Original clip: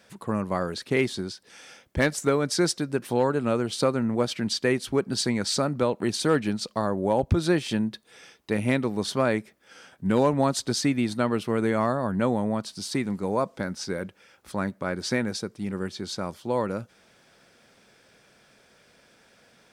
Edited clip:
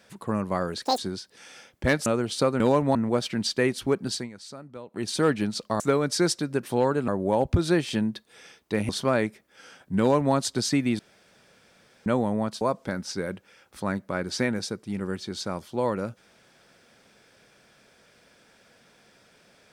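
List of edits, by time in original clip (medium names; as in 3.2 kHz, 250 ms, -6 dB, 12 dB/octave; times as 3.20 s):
0.85–1.11 s: speed 199%
2.19–3.47 s: move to 6.86 s
4.96–6.34 s: dip -17 dB, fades 0.40 s equal-power
8.67–9.01 s: delete
10.11–10.46 s: copy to 4.01 s
11.11–12.18 s: room tone
12.73–13.33 s: delete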